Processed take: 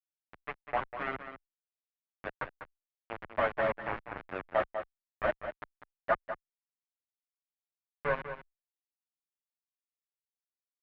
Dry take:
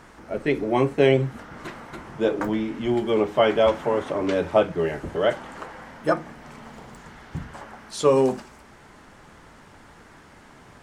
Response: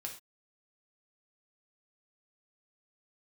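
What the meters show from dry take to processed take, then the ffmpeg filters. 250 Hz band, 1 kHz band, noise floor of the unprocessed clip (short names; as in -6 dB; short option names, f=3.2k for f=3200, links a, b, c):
-22.5 dB, -8.0 dB, -50 dBFS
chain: -filter_complex "[0:a]aresample=8000,asoftclip=type=tanh:threshold=-14.5dB,aresample=44100,highpass=f=630:w=0.5412,highpass=f=630:w=1.3066,acrusher=bits=3:mix=0:aa=0.000001,lowpass=f=2k:w=0.5412,lowpass=f=2k:w=1.3066,aecho=1:1:197:0.316,asplit=2[a][b];[b]adelay=8.7,afreqshift=-0.63[c];[a][c]amix=inputs=2:normalize=1"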